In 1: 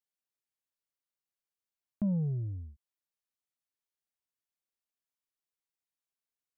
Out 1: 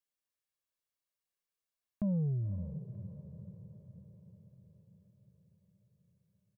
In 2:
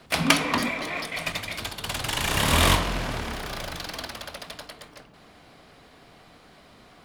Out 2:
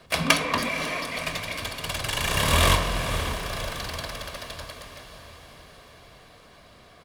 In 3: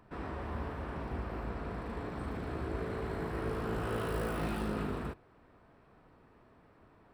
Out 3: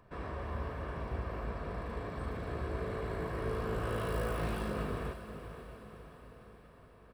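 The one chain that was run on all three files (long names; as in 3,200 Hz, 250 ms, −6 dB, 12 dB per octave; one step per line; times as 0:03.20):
comb filter 1.8 ms, depth 37%
on a send: feedback delay with all-pass diffusion 537 ms, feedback 55%, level −11 dB
on the sum: level −1 dB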